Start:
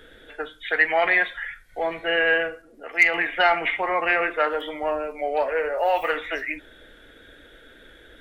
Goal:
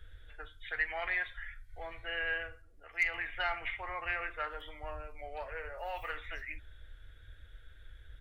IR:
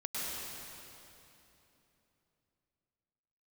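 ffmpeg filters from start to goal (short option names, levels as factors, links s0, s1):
-af "firequalizer=gain_entry='entry(100,0);entry(170,-30);entry(1200,-19)':delay=0.05:min_phase=1,volume=1.88"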